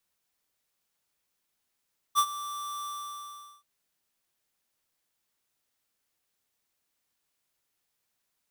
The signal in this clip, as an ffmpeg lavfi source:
-f lavfi -i "aevalsrc='0.0944*(2*lt(mod(1170*t,1),0.5)-1)':d=1.48:s=44100,afade=t=in:d=0.038,afade=t=out:st=0.038:d=0.065:silence=0.158,afade=t=out:st=0.7:d=0.78"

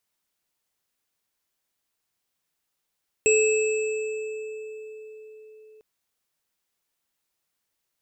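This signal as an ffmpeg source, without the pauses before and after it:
-f lavfi -i "aevalsrc='0.141*pow(10,-3*t/4.84)*sin(2*PI*433*t)+0.0794*pow(10,-3*t/3.15)*sin(2*PI*2620*t)+0.0841*pow(10,-3*t/2.07)*sin(2*PI*7690*t)':d=2.55:s=44100"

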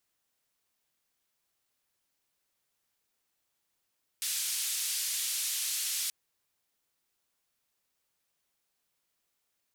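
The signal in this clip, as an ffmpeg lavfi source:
-f lavfi -i "anoisesrc=c=white:d=1.88:r=44100:seed=1,highpass=f=3100,lowpass=f=12000,volume=-24.1dB"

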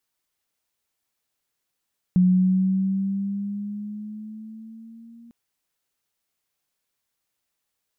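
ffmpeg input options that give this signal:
-f lavfi -i "aevalsrc='pow(10,(-13-31*t/3.15)/20)*sin(2*PI*181*3.15/(4.5*log(2)/12)*(exp(4.5*log(2)/12*t/3.15)-1))':d=3.15:s=44100"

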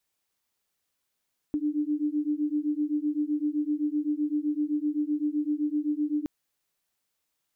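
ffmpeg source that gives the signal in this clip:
-f lavfi -i "aevalsrc='0.0398*(sin(2*PI*294*t)+sin(2*PI*301.8*t))':d=4.72:s=44100"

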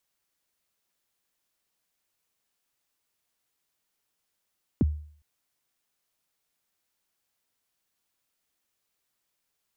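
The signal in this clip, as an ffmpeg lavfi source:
-f lavfi -i "aevalsrc='0.158*pow(10,-3*t/0.52)*sin(2*PI*(350*0.027/log(75/350)*(exp(log(75/350)*min(t,0.027)/0.027)-1)+75*max(t-0.027,0)))':d=0.41:s=44100"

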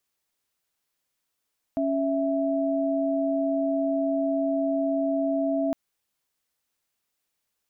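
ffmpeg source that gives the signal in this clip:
-f lavfi -i "aevalsrc='0.0562*(sin(2*PI*277.18*t)+sin(2*PI*659.26*t))':d=3.96:s=44100"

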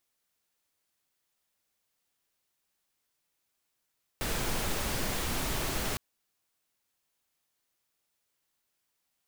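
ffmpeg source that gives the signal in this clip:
-f lavfi -i "anoisesrc=c=pink:a=0.136:d=1.76:r=44100:seed=1"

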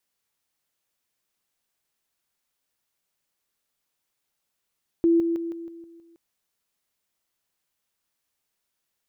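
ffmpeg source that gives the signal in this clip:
-f lavfi -i "aevalsrc='pow(10,(-15.5-6*floor(t/0.16))/20)*sin(2*PI*335*t)':d=1.12:s=44100"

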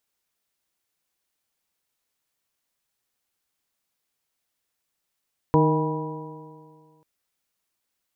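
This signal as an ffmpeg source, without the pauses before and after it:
-f lavfi -i "aevalsrc='0.126*pow(10,-3*t/2)*sin(2*PI*154.24*t)+0.106*pow(10,-3*t/2)*sin(2*PI*309.9*t)+0.112*pow(10,-3*t/2)*sin(2*PI*468.4*t)+0.0316*pow(10,-3*t/2)*sin(2*PI*631.09*t)+0.0355*pow(10,-3*t/2)*sin(2*PI*799.28*t)+0.1*pow(10,-3*t/2)*sin(2*PI*974.2*t)':d=1.49:s=44100"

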